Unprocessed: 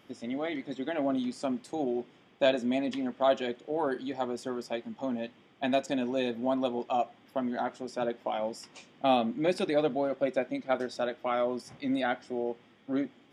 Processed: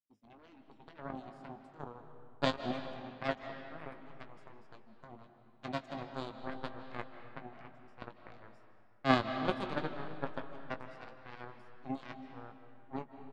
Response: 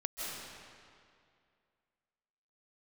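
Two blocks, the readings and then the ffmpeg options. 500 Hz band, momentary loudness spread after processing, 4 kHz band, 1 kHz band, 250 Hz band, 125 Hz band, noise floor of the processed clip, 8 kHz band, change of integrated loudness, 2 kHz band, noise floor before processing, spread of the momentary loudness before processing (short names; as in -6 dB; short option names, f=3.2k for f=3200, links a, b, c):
-12.5 dB, 22 LU, -6.0 dB, -7.5 dB, -10.5 dB, +1.0 dB, -61 dBFS, under -10 dB, -8.5 dB, -4.5 dB, -60 dBFS, 8 LU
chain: -filter_complex "[0:a]equalizer=f=120:w=0.44:g=13.5,aeval=exprs='0.398*(cos(1*acos(clip(val(0)/0.398,-1,1)))-cos(1*PI/2))+0.141*(cos(3*acos(clip(val(0)/0.398,-1,1)))-cos(3*PI/2))':c=same,agate=range=-33dB:threshold=-56dB:ratio=3:detection=peak,asplit=2[a][b];[b]adelay=19,volume=-10dB[c];[a][c]amix=inputs=2:normalize=0,asplit=2[d][e];[1:a]atrim=start_sample=2205,lowpass=4.9k[f];[e][f]afir=irnorm=-1:irlink=0,volume=-7dB[g];[d][g]amix=inputs=2:normalize=0,volume=-4dB"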